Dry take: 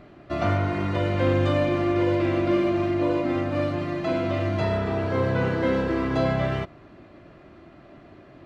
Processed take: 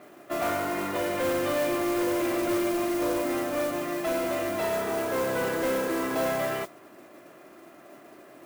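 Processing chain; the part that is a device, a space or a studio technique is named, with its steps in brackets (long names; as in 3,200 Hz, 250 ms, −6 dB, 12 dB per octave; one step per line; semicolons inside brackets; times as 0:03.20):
carbon microphone (band-pass filter 330–3,300 Hz; soft clipping −23.5 dBFS, distortion −14 dB; noise that follows the level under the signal 14 dB)
level +1.5 dB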